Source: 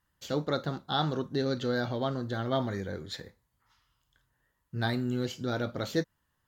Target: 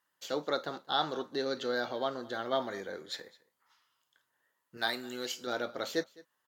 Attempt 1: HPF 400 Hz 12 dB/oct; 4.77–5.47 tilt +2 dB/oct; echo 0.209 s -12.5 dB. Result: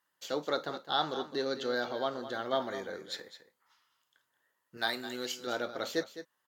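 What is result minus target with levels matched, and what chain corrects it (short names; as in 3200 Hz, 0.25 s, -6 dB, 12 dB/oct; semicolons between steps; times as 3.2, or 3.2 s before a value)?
echo-to-direct +10 dB
HPF 400 Hz 12 dB/oct; 4.77–5.47 tilt +2 dB/oct; echo 0.209 s -22.5 dB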